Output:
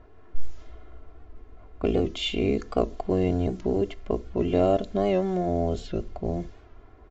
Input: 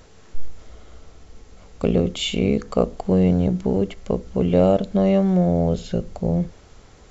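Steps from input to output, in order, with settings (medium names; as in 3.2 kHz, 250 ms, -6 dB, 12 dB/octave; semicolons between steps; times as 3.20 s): level-controlled noise filter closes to 1.4 kHz, open at -14.5 dBFS; comb 2.9 ms, depth 64%; warped record 78 rpm, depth 100 cents; trim -4.5 dB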